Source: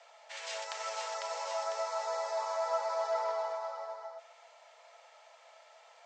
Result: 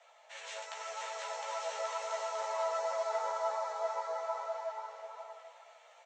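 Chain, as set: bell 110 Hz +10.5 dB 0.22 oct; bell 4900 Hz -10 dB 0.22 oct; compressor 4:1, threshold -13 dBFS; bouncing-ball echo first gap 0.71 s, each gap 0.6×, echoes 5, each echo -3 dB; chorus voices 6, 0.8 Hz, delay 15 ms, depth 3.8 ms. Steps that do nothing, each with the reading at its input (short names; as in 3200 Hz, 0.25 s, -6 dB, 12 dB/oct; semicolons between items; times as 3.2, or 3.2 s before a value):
bell 110 Hz: input band starts at 430 Hz; compressor, threshold -13 dBFS: input peak -21.5 dBFS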